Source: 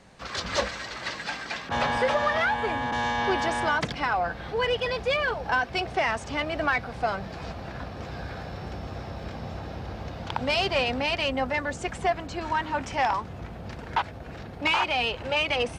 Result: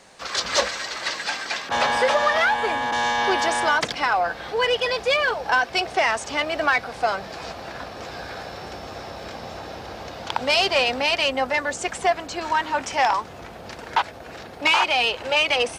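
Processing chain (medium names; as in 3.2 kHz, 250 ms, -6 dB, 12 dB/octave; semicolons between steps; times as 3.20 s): tone controls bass -13 dB, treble +6 dB; trim +5 dB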